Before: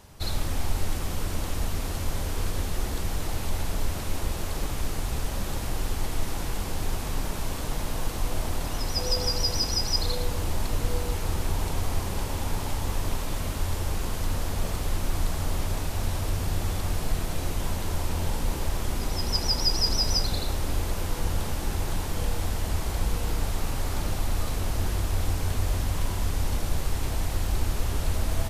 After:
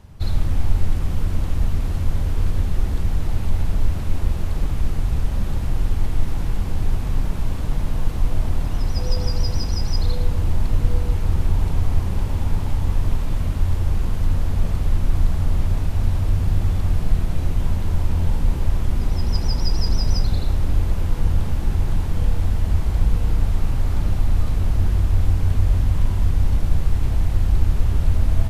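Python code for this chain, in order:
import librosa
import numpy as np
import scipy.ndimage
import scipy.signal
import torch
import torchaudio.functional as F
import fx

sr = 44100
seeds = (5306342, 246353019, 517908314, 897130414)

y = fx.bass_treble(x, sr, bass_db=11, treble_db=-7)
y = F.gain(torch.from_numpy(y), -1.5).numpy()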